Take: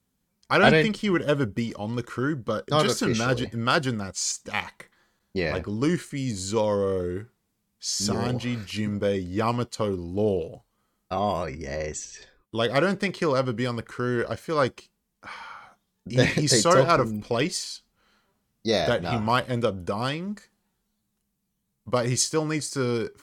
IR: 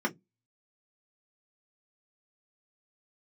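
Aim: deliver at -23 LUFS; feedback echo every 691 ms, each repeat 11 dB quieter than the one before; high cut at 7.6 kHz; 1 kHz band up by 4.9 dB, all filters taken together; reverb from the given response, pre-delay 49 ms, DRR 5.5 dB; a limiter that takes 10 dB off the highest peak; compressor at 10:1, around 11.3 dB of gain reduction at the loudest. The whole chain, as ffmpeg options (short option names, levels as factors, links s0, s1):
-filter_complex "[0:a]lowpass=7600,equalizer=f=1000:t=o:g=6.5,acompressor=threshold=0.0794:ratio=10,alimiter=limit=0.112:level=0:latency=1,aecho=1:1:691|1382|2073:0.282|0.0789|0.0221,asplit=2[s0][s1];[1:a]atrim=start_sample=2205,adelay=49[s2];[s1][s2]afir=irnorm=-1:irlink=0,volume=0.2[s3];[s0][s3]amix=inputs=2:normalize=0,volume=1.88"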